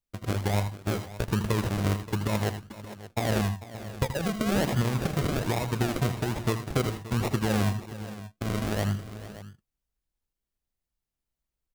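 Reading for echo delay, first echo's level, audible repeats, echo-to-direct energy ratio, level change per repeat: 80 ms, -10.0 dB, 3, -8.0 dB, no steady repeat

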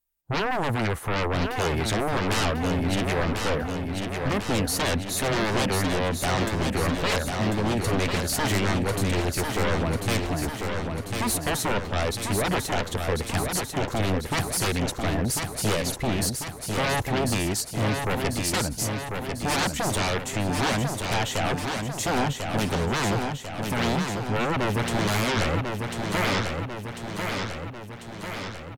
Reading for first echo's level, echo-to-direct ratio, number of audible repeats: -5.0 dB, -3.0 dB, 7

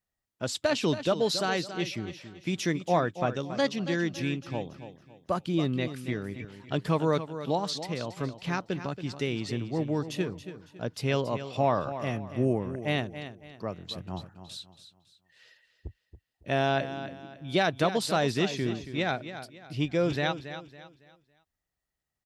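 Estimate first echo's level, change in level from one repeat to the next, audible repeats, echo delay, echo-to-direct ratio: -11.5 dB, -9.5 dB, 3, 0.278 s, -11.0 dB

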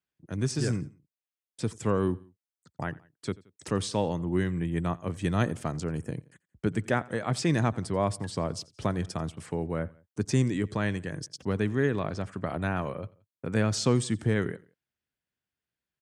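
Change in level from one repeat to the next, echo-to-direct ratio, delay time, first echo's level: -6.0 dB, -22.0 dB, 87 ms, -23.0 dB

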